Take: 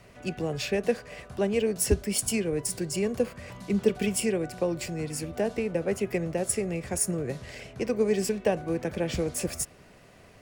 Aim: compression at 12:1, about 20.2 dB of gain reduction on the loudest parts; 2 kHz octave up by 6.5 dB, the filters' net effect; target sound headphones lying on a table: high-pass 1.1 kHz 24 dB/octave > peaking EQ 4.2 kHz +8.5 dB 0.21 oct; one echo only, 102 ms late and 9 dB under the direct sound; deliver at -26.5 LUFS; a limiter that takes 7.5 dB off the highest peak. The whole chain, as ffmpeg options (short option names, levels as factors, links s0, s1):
-af "equalizer=f=2000:t=o:g=8,acompressor=threshold=0.0112:ratio=12,alimiter=level_in=3.76:limit=0.0631:level=0:latency=1,volume=0.266,highpass=f=1100:w=0.5412,highpass=f=1100:w=1.3066,equalizer=f=4200:t=o:w=0.21:g=8.5,aecho=1:1:102:0.355,volume=12.6"